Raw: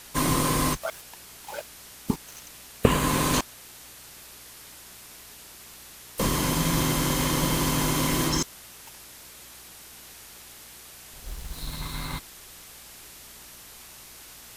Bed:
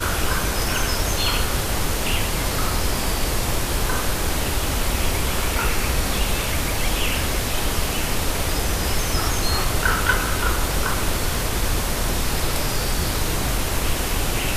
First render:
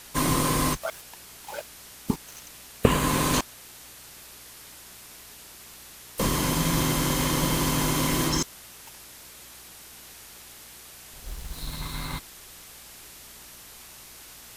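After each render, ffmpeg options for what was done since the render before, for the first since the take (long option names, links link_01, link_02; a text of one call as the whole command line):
ffmpeg -i in.wav -af anull out.wav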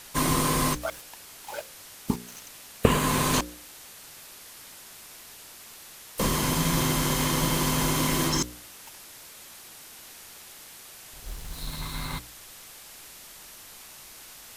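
ffmpeg -i in.wav -af "bandreject=frequency=60:width_type=h:width=4,bandreject=frequency=120:width_type=h:width=4,bandreject=frequency=180:width_type=h:width=4,bandreject=frequency=240:width_type=h:width=4,bandreject=frequency=300:width_type=h:width=4,bandreject=frequency=360:width_type=h:width=4,bandreject=frequency=420:width_type=h:width=4,bandreject=frequency=480:width_type=h:width=4,bandreject=frequency=540:width_type=h:width=4" out.wav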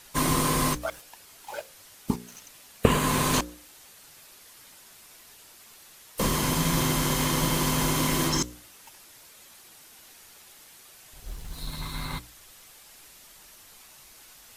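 ffmpeg -i in.wav -af "afftdn=noise_reduction=6:noise_floor=-47" out.wav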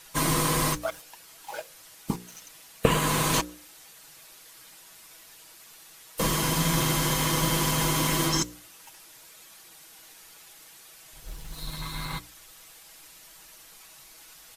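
ffmpeg -i in.wav -af "lowshelf=frequency=390:gain=-3,aecho=1:1:6.2:0.48" out.wav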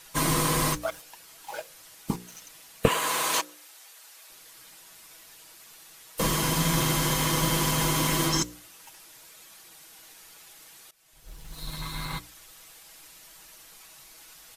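ffmpeg -i in.wav -filter_complex "[0:a]asettb=1/sr,asplit=3[link_01][link_02][link_03];[link_01]atrim=end=2.884[link_04];[link_02]atrim=start=2.88:end=4.3,asetpts=PTS-STARTPTS,afade=type=in:duration=0.004:curve=qsin,afade=type=out:start_time=1.416:duration=0.004:curve=qsin,highpass=540[link_05];[link_03]atrim=start=4.296[link_06];[link_04][link_05]acrossfade=duration=0.004:curve1=hsin:curve2=qsin[link_07];[link_07][link_06]acrossfade=duration=0.004:curve1=qsin:curve2=hsin,asplit=2[link_08][link_09];[link_08]atrim=end=10.91,asetpts=PTS-STARTPTS,afade=type=out:start_time=10.906:duration=0.004:curve=hsin:silence=0.105925[link_10];[link_09]atrim=start=10.91,asetpts=PTS-STARTPTS,afade=type=in:duration=0.83:silence=0.105925[link_11];[link_10][link_11]concat=n=2:v=0:a=1" out.wav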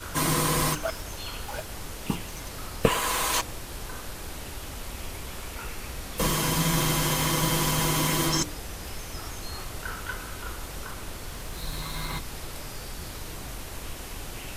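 ffmpeg -i in.wav -i bed.wav -filter_complex "[1:a]volume=-15.5dB[link_01];[0:a][link_01]amix=inputs=2:normalize=0" out.wav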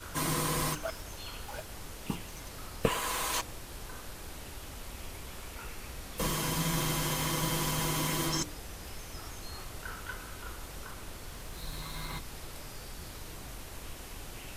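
ffmpeg -i in.wav -af "volume=-6.5dB" out.wav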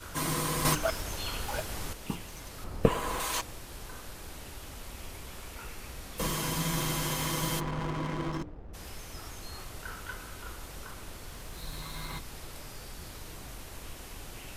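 ffmpeg -i in.wav -filter_complex "[0:a]asettb=1/sr,asplit=3[link_01][link_02][link_03];[link_01]atrim=end=2.644[link_04];[link_02]atrim=start=2.64:end=3.2,asetpts=PTS-STARTPTS,afade=type=in:duration=0.004:curve=qsin,afade=type=out:start_time=0.556:duration=0.004:curve=qsin,tiltshelf=frequency=1200:gain=6.5[link_05];[link_03]atrim=start=3.196[link_06];[link_04][link_05]acrossfade=duration=0.004:curve1=hsin:curve2=qsin[link_07];[link_07][link_06]acrossfade=duration=0.004:curve1=qsin:curve2=hsin,asplit=3[link_08][link_09][link_10];[link_08]afade=type=out:start_time=7.59:duration=0.02[link_11];[link_09]adynamicsmooth=sensitivity=4:basefreq=530,afade=type=in:start_time=7.59:duration=0.02,afade=type=out:start_time=8.73:duration=0.02[link_12];[link_10]afade=type=in:start_time=8.73:duration=0.02[link_13];[link_11][link_12][link_13]amix=inputs=3:normalize=0,asplit=3[link_14][link_15][link_16];[link_14]atrim=end=0.652[link_17];[link_15]atrim=start=0.648:end=1.932,asetpts=PTS-STARTPTS,volume=7dB[link_18];[link_16]atrim=start=1.928[link_19];[link_17][link_18]acrossfade=duration=0.004:curve1=hsin:curve2=hsin[link_20];[link_20][link_19]acrossfade=duration=0.004:curve1=hsin:curve2=hsin" out.wav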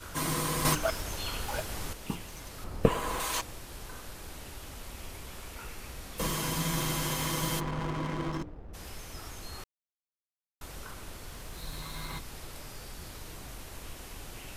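ffmpeg -i in.wav -filter_complex "[0:a]asplit=3[link_01][link_02][link_03];[link_01]atrim=end=9.64,asetpts=PTS-STARTPTS,afade=type=out:start_time=9.636:duration=0.004:curve=hsin[link_04];[link_02]atrim=start=9.64:end=10.61,asetpts=PTS-STARTPTS,volume=0[link_05];[link_03]atrim=start=10.61,asetpts=PTS-STARTPTS,afade=type=in:duration=0.004:curve=hsin[link_06];[link_04][link_05][link_06]concat=n=3:v=0:a=1" out.wav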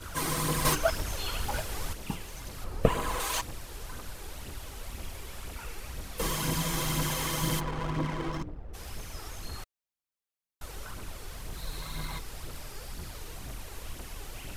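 ffmpeg -i in.wav -af "aphaser=in_gain=1:out_gain=1:delay=2.7:decay=0.44:speed=2:type=triangular" out.wav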